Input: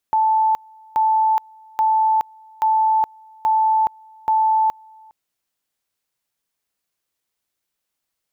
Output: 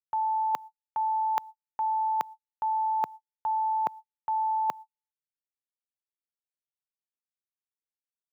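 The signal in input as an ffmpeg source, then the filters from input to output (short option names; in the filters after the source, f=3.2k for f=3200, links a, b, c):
-f lavfi -i "aevalsrc='pow(10,(-13.5-29*gte(mod(t,0.83),0.42))/20)*sin(2*PI*877*t)':d=4.98:s=44100"
-af "highpass=f=130:w=0.5412,highpass=f=130:w=1.3066,agate=range=-57dB:threshold=-33dB:ratio=16:detection=peak,areverse,acompressor=threshold=-26dB:ratio=10,areverse"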